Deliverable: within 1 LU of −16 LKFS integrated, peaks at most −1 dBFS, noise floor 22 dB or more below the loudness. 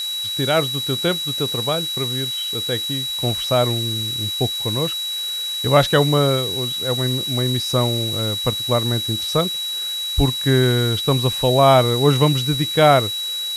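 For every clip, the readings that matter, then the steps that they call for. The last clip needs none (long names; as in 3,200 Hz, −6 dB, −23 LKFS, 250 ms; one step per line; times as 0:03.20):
interfering tone 3,900 Hz; level of the tone −23 dBFS; background noise floor −26 dBFS; target noise floor −41 dBFS; integrated loudness −18.5 LKFS; sample peak −2.0 dBFS; target loudness −16.0 LKFS
→ notch filter 3,900 Hz, Q 30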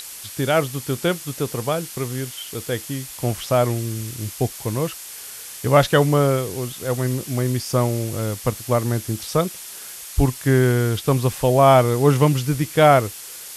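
interfering tone none found; background noise floor −37 dBFS; target noise floor −43 dBFS
→ broadband denoise 6 dB, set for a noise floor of −37 dBFS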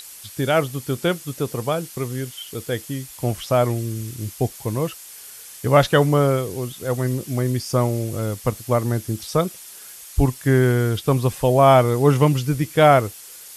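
background noise floor −41 dBFS; target noise floor −43 dBFS
→ broadband denoise 6 dB, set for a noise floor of −41 dBFS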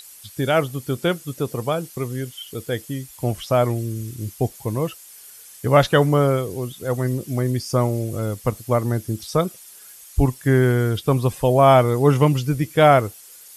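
background noise floor −44 dBFS; integrated loudness −20.5 LKFS; sample peak −2.5 dBFS; target loudness −16.0 LKFS
→ level +4.5 dB
brickwall limiter −1 dBFS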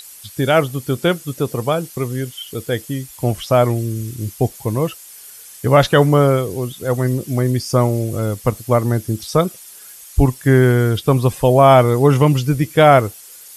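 integrated loudness −16.5 LKFS; sample peak −1.0 dBFS; background noise floor −40 dBFS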